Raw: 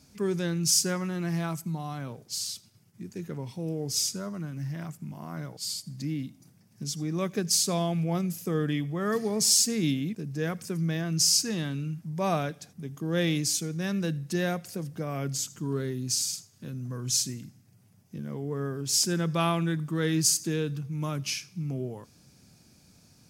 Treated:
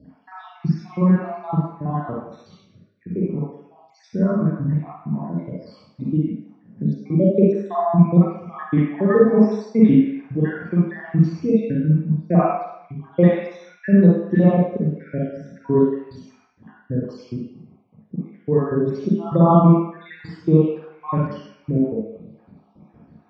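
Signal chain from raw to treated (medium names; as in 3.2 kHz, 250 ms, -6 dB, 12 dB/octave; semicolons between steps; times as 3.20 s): random holes in the spectrogram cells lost 72%; low-pass 2.2 kHz 24 dB/octave; reverberation RT60 0.75 s, pre-delay 38 ms, DRR -6.5 dB; trim -2.5 dB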